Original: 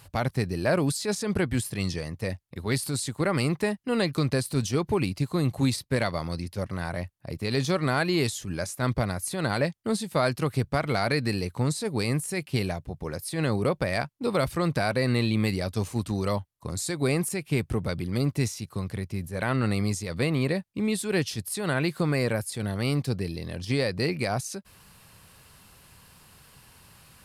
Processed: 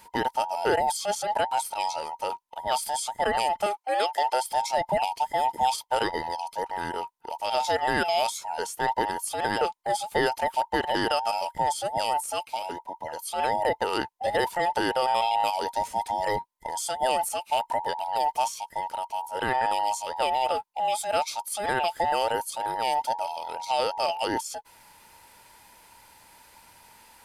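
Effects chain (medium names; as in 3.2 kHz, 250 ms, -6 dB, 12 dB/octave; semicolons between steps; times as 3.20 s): every band turned upside down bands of 1 kHz; 3.66–4.49 s: high-pass 310 Hz 24 dB/octave; 12.49–13.18 s: compression 2:1, threshold -32 dBFS, peak gain reduction 6.5 dB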